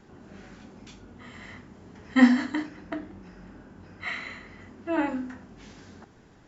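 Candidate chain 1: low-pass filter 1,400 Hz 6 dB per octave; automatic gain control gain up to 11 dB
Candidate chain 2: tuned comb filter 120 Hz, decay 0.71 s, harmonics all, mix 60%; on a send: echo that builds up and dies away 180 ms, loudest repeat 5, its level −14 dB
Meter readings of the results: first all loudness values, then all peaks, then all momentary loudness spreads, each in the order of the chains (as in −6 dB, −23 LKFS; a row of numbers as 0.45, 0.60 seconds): −21.5, −34.0 LKFS; −1.0, −11.5 dBFS; 22, 26 LU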